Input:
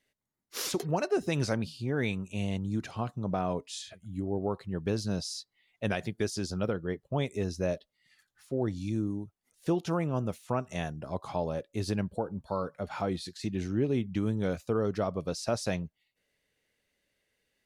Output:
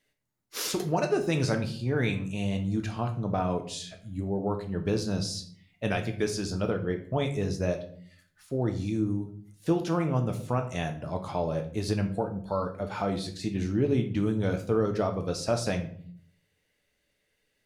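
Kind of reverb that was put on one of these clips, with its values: shoebox room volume 66 m³, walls mixed, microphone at 0.43 m; gain +1.5 dB

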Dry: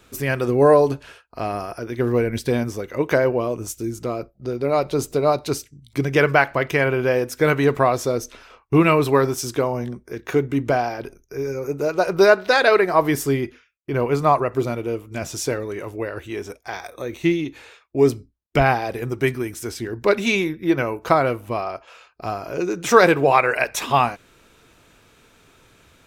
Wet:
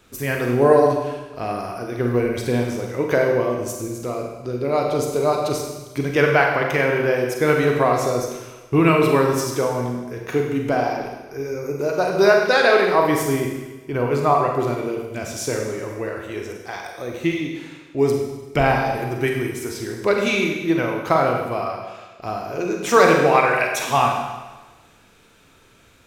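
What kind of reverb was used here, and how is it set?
Schroeder reverb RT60 1.2 s, combs from 33 ms, DRR 1 dB; gain -2 dB

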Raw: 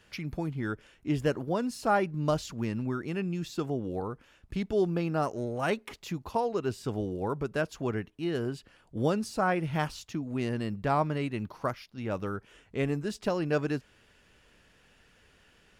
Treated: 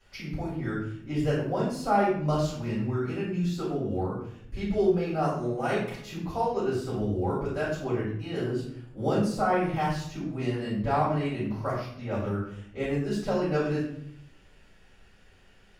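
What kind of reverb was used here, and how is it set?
shoebox room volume 120 m³, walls mixed, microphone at 5.1 m; gain -14 dB

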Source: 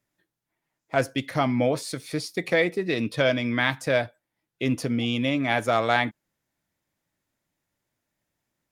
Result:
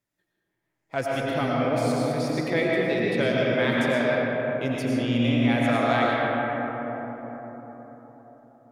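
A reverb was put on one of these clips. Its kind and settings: digital reverb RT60 4.8 s, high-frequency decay 0.3×, pre-delay 65 ms, DRR -5 dB; gain -5.5 dB

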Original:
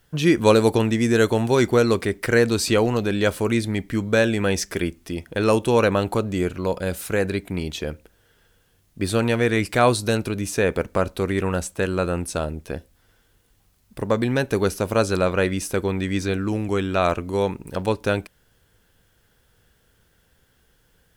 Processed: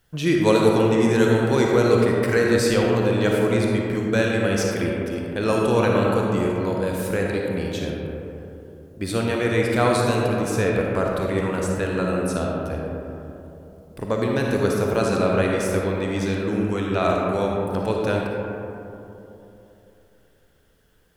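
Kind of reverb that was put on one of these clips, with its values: digital reverb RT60 3.2 s, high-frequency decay 0.3×, pre-delay 15 ms, DRR -1.5 dB; gain -4 dB

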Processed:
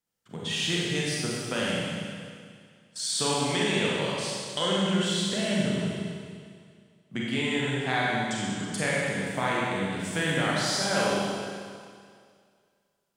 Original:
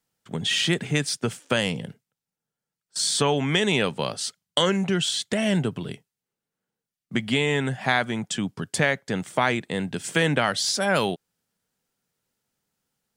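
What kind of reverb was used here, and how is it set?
Schroeder reverb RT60 2.1 s, combs from 31 ms, DRR -5.5 dB; gain -9.5 dB

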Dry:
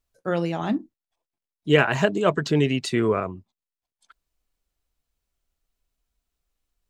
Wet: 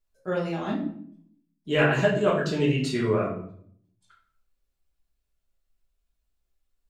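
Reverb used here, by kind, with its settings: shoebox room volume 90 m³, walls mixed, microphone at 1.3 m; gain -8.5 dB

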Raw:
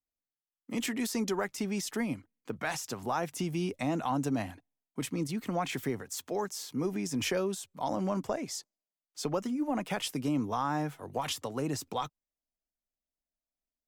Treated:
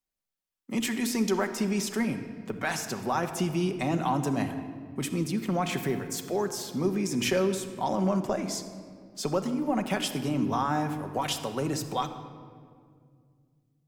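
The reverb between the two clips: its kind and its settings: shoebox room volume 3900 m³, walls mixed, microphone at 1.1 m; gain +3 dB

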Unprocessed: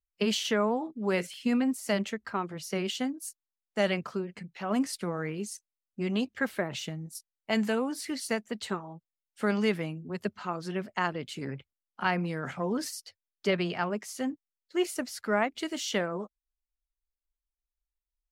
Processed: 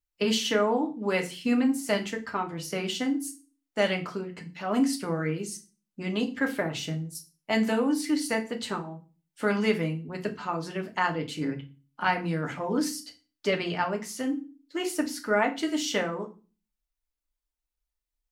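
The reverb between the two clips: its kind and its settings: FDN reverb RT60 0.33 s, low-frequency decay 1.55×, high-frequency decay 0.95×, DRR 3 dB; gain +1 dB

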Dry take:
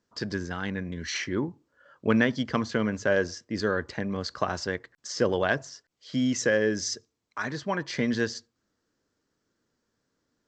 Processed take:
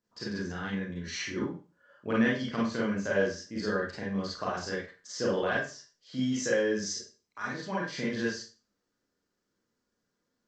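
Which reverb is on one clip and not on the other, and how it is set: Schroeder reverb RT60 0.34 s, combs from 31 ms, DRR -6 dB; gain -10.5 dB

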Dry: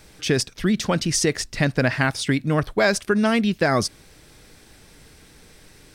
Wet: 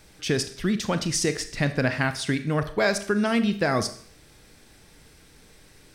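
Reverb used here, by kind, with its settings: Schroeder reverb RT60 0.54 s, combs from 27 ms, DRR 10 dB; gain -4 dB

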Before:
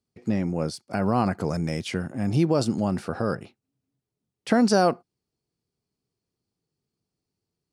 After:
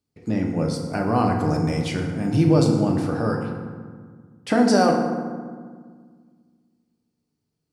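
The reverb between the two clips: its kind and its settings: FDN reverb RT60 1.7 s, low-frequency decay 1.45×, high-frequency decay 0.5×, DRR 0.5 dB

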